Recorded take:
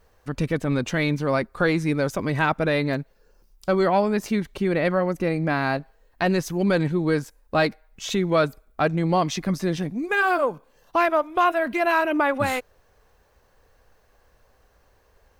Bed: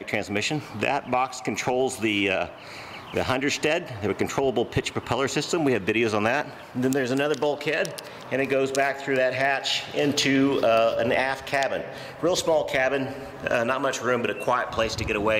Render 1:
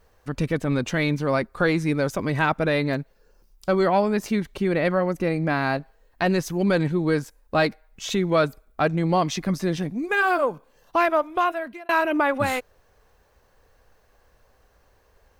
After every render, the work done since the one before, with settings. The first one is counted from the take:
0:11.28–0:11.89: fade out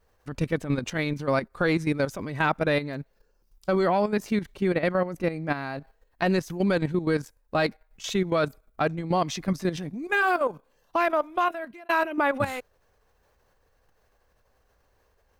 output level in coarse steps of 11 dB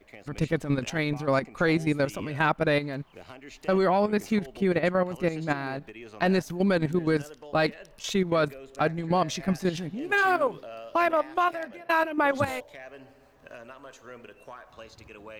mix in bed −21.5 dB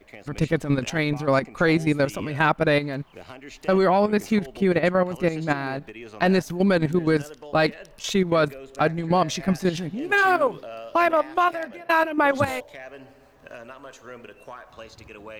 level +4 dB

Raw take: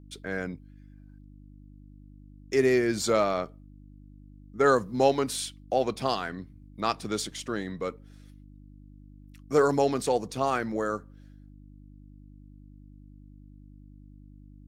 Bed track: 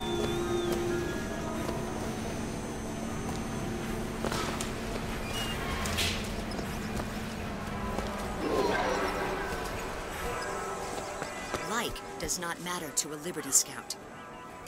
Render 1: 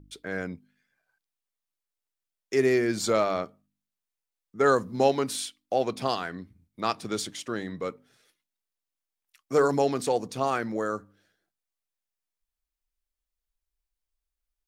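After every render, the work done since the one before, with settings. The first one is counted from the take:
hum removal 50 Hz, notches 6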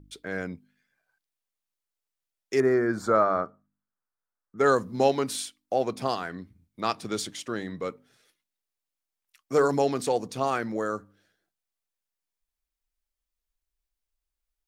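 0:02.60–0:04.58: high shelf with overshoot 2,000 Hz −11.5 dB, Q 3
0:05.42–0:06.30: parametric band 3,300 Hz −4.5 dB 1.1 octaves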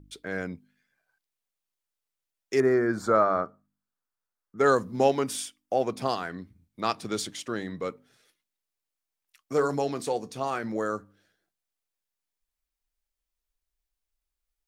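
0:04.94–0:05.93: notch filter 4,100 Hz, Q 6.3
0:09.53–0:10.64: tuned comb filter 74 Hz, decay 0.16 s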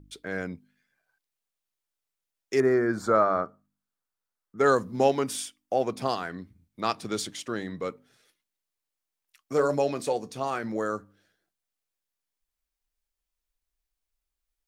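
0:09.59–0:10.13: hollow resonant body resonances 580/2,500 Hz, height 13 dB, ringing for 95 ms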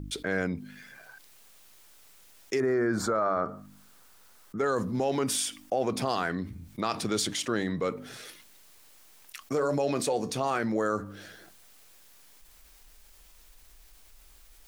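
brickwall limiter −19.5 dBFS, peak gain reduction 10 dB
envelope flattener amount 50%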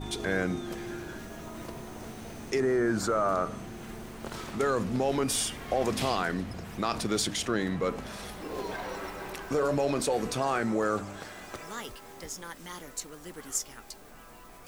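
mix in bed track −7.5 dB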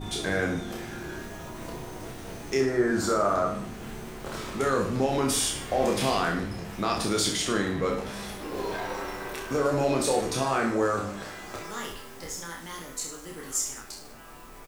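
peak hold with a decay on every bin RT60 0.30 s
reverse bouncing-ball delay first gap 30 ms, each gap 1.15×, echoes 5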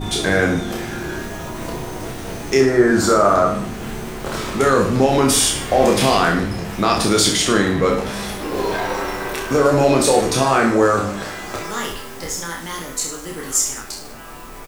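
level +10.5 dB
brickwall limiter −2 dBFS, peak gain reduction 1 dB

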